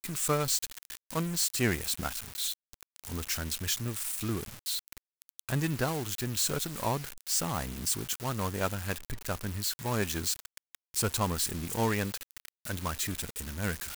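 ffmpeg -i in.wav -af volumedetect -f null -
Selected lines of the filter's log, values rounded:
mean_volume: -33.3 dB
max_volume: -14.2 dB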